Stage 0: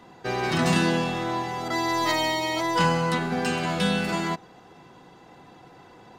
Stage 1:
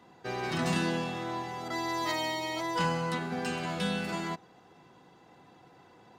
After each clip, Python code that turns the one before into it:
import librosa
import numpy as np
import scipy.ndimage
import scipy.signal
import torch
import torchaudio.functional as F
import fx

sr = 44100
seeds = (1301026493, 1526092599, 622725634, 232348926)

y = scipy.signal.sosfilt(scipy.signal.butter(2, 55.0, 'highpass', fs=sr, output='sos'), x)
y = y * librosa.db_to_amplitude(-7.5)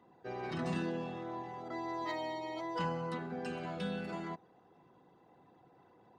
y = fx.envelope_sharpen(x, sr, power=1.5)
y = y * librosa.db_to_amplitude(-6.5)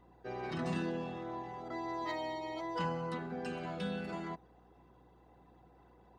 y = fx.add_hum(x, sr, base_hz=60, snr_db=26)